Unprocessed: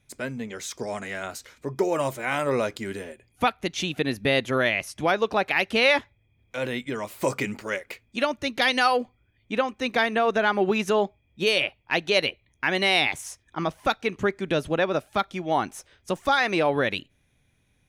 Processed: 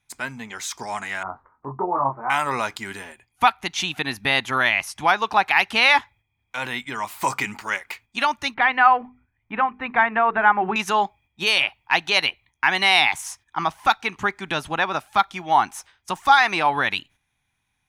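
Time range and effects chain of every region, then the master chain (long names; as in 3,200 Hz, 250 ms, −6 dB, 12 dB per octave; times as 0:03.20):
0:01.23–0:02.30: Chebyshev low-pass filter 1,200 Hz, order 4 + double-tracking delay 22 ms −3 dB
0:08.54–0:10.76: low-pass filter 2,200 Hz 24 dB per octave + low-shelf EQ 150 Hz +6.5 dB + mains-hum notches 50/100/150/200/250/300/350/400/450 Hz
whole clip: noise gate −51 dBFS, range −8 dB; low shelf with overshoot 680 Hz −7.5 dB, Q 3; level +4.5 dB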